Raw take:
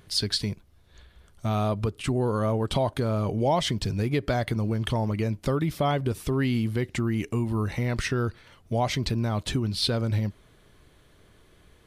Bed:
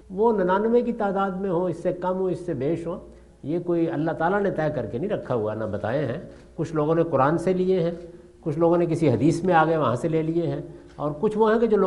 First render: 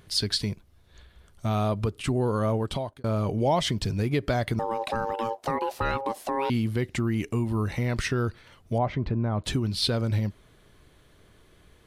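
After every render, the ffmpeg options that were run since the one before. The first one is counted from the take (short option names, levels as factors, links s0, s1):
-filter_complex "[0:a]asettb=1/sr,asplit=3[s0][s1][s2];[s0]atrim=end=4.594[s3];[s1]atrim=start=4.59:end=6.5,asetpts=PTS-STARTPTS,afade=t=in:d=0.004:c=qsin,afade=t=out:st=1.906:d=0.004:c=qsin,aeval=exprs='val(0)*sin(2*PI*680*n/s)':c=same[s4];[s2]atrim=start=6.496[s5];[s3][s4]acrossfade=d=0.004:c1=hsin:c2=qsin[s6];[s6][s5]acrossfade=d=0.004:c1=qsin:c2=hsin,asettb=1/sr,asplit=3[s7][s8][s9];[s7]atrim=end=8.784[s10];[s8]atrim=start=8.78:end=9.44,asetpts=PTS-STARTPTS,afade=t=in:d=0.004:c=qsin,afade=t=out:st=0.656:d=0.004:c=qsin,lowpass=1500[s11];[s9]atrim=start=9.436[s12];[s10][s11]acrossfade=d=0.004:c1=hsin:c2=qsin[s13];[s13][s12]acrossfade=d=0.004:c1=qsin:c2=hsin,asplit=2[s14][s15];[s14]atrim=end=3.04,asetpts=PTS-STARTPTS,afade=t=out:st=2.55:d=0.49[s16];[s15]atrim=start=3.04,asetpts=PTS-STARTPTS,afade=t=in:d=0.004:c=hsin[s17];[s16][s17]concat=n=2:v=0:a=1"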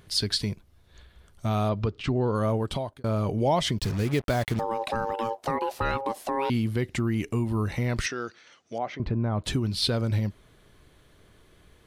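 -filter_complex "[0:a]asettb=1/sr,asplit=3[s0][s1][s2];[s0]atrim=end=1.694[s3];[s1]atrim=start=1.69:end=2.35,asetpts=PTS-STARTPTS,afade=t=in:d=0.004:c=qsin,afade=t=out:st=0.656:d=0.004:c=qsin,lowpass=f=5500:w=0.5412,lowpass=f=5500:w=1.3066[s4];[s2]atrim=start=2.346[s5];[s3][s4]acrossfade=d=0.004:c1=hsin:c2=qsin[s6];[s6][s5]acrossfade=d=0.004:c1=qsin:c2=hsin,asplit=3[s7][s8][s9];[s7]afade=t=out:st=3.78:d=0.02[s10];[s8]acrusher=bits=5:mix=0:aa=0.5,afade=t=in:st=3.78:d=0.02,afade=t=out:st=4.59:d=0.02[s11];[s9]afade=t=in:st=4.59:d=0.02[s12];[s10][s11][s12]amix=inputs=3:normalize=0,asettb=1/sr,asplit=3[s13][s14][s15];[s13]atrim=end=8.064[s16];[s14]atrim=start=8.06:end=9,asetpts=PTS-STARTPTS,afade=t=in:d=0.004:c=qsin,afade=t=out:st=0.936:d=0.004:c=qsin,highpass=380,equalizer=f=420:t=q:w=4:g=-4,equalizer=f=610:t=q:w=4:g=-4,equalizer=f=970:t=q:w=4:g=-7,equalizer=f=6000:t=q:w=4:g=9,lowpass=f=7300:w=0.5412,lowpass=f=7300:w=1.3066[s17];[s15]atrim=start=8.996[s18];[s16][s17]acrossfade=d=0.004:c1=hsin:c2=qsin[s19];[s19][s18]acrossfade=d=0.004:c1=qsin:c2=hsin"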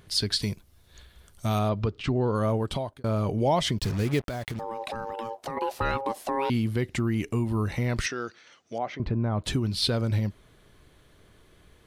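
-filter_complex "[0:a]asettb=1/sr,asplit=3[s0][s1][s2];[s0]atrim=end=0.424[s3];[s1]atrim=start=0.42:end=1.59,asetpts=PTS-STARTPTS,afade=t=in:d=0.004:c=qsin,afade=t=out:st=1.166:d=0.004:c=qsin,highshelf=f=4400:g=10[s4];[s2]atrim=start=1.586[s5];[s3][s4]acrossfade=d=0.004:c1=hsin:c2=qsin[s6];[s6][s5]acrossfade=d=0.004:c1=qsin:c2=hsin,asettb=1/sr,asplit=3[s7][s8][s9];[s7]atrim=end=4.214[s10];[s8]atrim=start=4.21:end=5.57,asetpts=PTS-STARTPTS,afade=t=in:d=0.004:c=qsin,afade=t=out:st=1.356:d=0.004:c=qsin,acompressor=threshold=0.0355:ratio=6:attack=3.2:release=140:knee=1:detection=peak[s11];[s9]atrim=start=5.566[s12];[s10][s11]acrossfade=d=0.004:c1=hsin:c2=qsin[s13];[s13][s12]acrossfade=d=0.004:c1=qsin:c2=hsin"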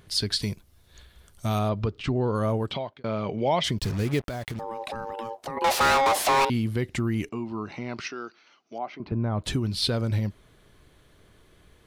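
-filter_complex "[0:a]asettb=1/sr,asplit=3[s0][s1][s2];[s0]atrim=end=2.714[s3];[s1]atrim=start=2.71:end=3.64,asetpts=PTS-STARTPTS,afade=t=in:d=0.004:c=qsin,afade=t=out:st=0.926:d=0.004:c=qsin,highpass=160,equalizer=f=290:t=q:w=4:g=-4,equalizer=f=2200:t=q:w=4:g=7,equalizer=f=3200:t=q:w=4:g=4,lowpass=f=5000:w=0.5412,lowpass=f=5000:w=1.3066[s4];[s2]atrim=start=3.636[s5];[s3][s4]acrossfade=d=0.004:c1=hsin:c2=qsin[s6];[s6][s5]acrossfade=d=0.004:c1=qsin:c2=hsin,asettb=1/sr,asplit=3[s7][s8][s9];[s7]atrim=end=5.644[s10];[s8]atrim=start=5.64:end=6.45,asetpts=PTS-STARTPTS,afade=t=in:d=0.004:c=qsin,afade=t=out:st=0.806:d=0.004:c=qsin,asplit=2[s11][s12];[s12]highpass=f=720:p=1,volume=35.5,asoftclip=type=tanh:threshold=0.2[s13];[s11][s13]amix=inputs=2:normalize=0,lowpass=f=6300:p=1,volume=0.501[s14];[s9]atrim=start=6.446[s15];[s10][s14]acrossfade=d=0.004:c1=hsin:c2=qsin[s16];[s16][s15]acrossfade=d=0.004:c1=qsin:c2=hsin,asettb=1/sr,asplit=3[s17][s18][s19];[s17]atrim=end=7.294[s20];[s18]atrim=start=7.29:end=9.12,asetpts=PTS-STARTPTS,afade=t=in:d=0.004:c=qsin,afade=t=out:st=1.826:d=0.004:c=qsin,highpass=250,equalizer=f=510:t=q:w=4:g=-10,equalizer=f=1800:t=q:w=4:g=-10,equalizer=f=3500:t=q:w=4:g=-7,lowpass=f=5000:w=0.5412,lowpass=f=5000:w=1.3066[s21];[s19]atrim=start=9.116[s22];[s20][s21]acrossfade=d=0.004:c1=hsin:c2=qsin[s23];[s23][s22]acrossfade=d=0.004:c1=qsin:c2=hsin"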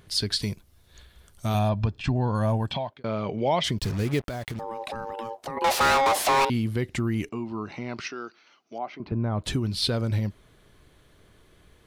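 -filter_complex "[0:a]asettb=1/sr,asplit=3[s0][s1][s2];[s0]atrim=end=1.544[s3];[s1]atrim=start=1.54:end=2.9,asetpts=PTS-STARTPTS,afade=t=in:d=0.004:c=qsin,afade=t=out:st=1.356:d=0.004:c=qsin,aecho=1:1:1.2:0.6,atrim=end_sample=59976[s4];[s2]atrim=start=2.896[s5];[s3][s4]acrossfade=d=0.004:c1=hsin:c2=qsin[s6];[s6][s5]acrossfade=d=0.004:c1=qsin:c2=hsin"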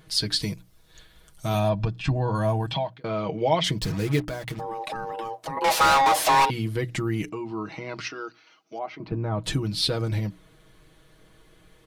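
-af "bandreject=f=60:t=h:w=6,bandreject=f=120:t=h:w=6,bandreject=f=180:t=h:w=6,bandreject=f=240:t=h:w=6,bandreject=f=300:t=h:w=6,aecho=1:1:6.3:0.71"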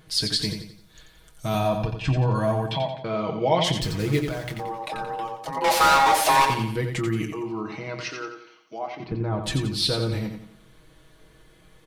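-filter_complex "[0:a]asplit=2[s0][s1];[s1]adelay=23,volume=0.282[s2];[s0][s2]amix=inputs=2:normalize=0,asplit=2[s3][s4];[s4]aecho=0:1:88|176|264|352|440:0.447|0.179|0.0715|0.0286|0.0114[s5];[s3][s5]amix=inputs=2:normalize=0"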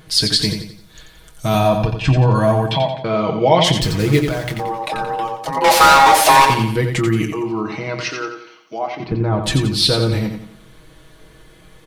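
-af "volume=2.66,alimiter=limit=0.891:level=0:latency=1"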